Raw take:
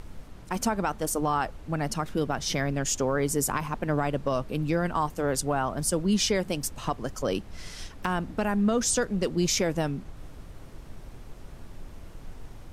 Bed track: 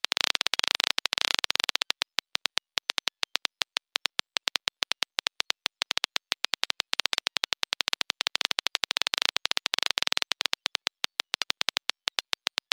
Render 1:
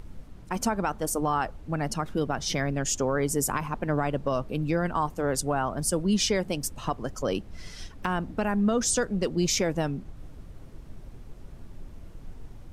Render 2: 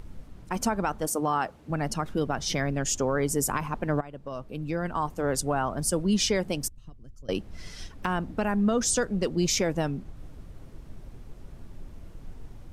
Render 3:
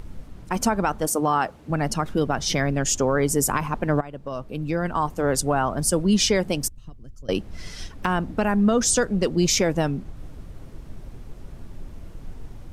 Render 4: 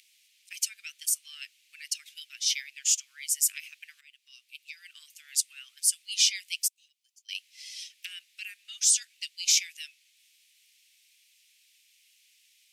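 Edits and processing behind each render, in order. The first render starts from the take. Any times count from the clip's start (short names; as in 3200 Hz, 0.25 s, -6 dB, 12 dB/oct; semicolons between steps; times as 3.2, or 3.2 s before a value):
denoiser 6 dB, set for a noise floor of -46 dBFS
1.07–1.7 HPF 130 Hz; 4.01–5.29 fade in, from -17.5 dB; 6.68–7.29 passive tone stack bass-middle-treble 10-0-1
gain +5 dB
steep high-pass 2300 Hz 48 dB/oct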